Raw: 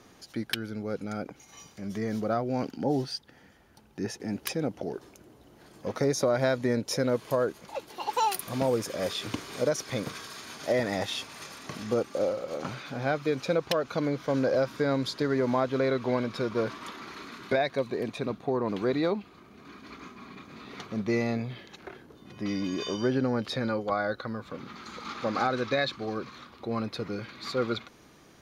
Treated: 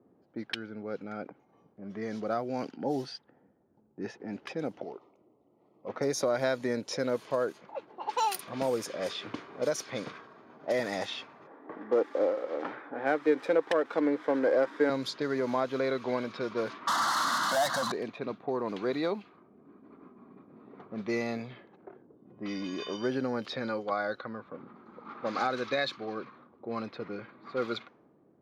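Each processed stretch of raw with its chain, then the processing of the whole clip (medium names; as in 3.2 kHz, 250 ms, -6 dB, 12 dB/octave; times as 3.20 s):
4.84–5.89 s: Butterworth band-stop 1.6 kHz, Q 2.7 + tilt shelf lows -8 dB, about 760 Hz
11.47–14.90 s: cabinet simulation 290–4500 Hz, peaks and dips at 300 Hz +10 dB, 460 Hz +6 dB, 860 Hz +6 dB, 1.8 kHz +8 dB, 2.7 kHz -7 dB, 4.3 kHz -8 dB + sliding maximum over 3 samples
16.87–17.92 s: overdrive pedal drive 36 dB, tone 5.6 kHz, clips at -14 dBFS + static phaser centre 1 kHz, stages 4
whole clip: level-controlled noise filter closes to 410 Hz, open at -24 dBFS; high-pass 110 Hz; bass shelf 170 Hz -9.5 dB; trim -2 dB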